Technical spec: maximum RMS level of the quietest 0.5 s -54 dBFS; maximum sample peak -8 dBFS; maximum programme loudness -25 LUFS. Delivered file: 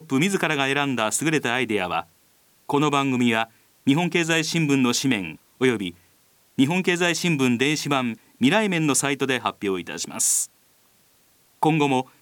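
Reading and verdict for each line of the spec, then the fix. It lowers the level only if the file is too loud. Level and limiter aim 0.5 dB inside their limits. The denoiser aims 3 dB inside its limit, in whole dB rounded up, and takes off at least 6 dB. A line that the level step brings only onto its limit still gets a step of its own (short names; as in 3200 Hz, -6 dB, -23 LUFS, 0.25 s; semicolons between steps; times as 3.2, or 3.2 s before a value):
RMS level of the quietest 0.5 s -60 dBFS: OK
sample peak -4.5 dBFS: fail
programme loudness -22.0 LUFS: fail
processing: gain -3.5 dB; limiter -8.5 dBFS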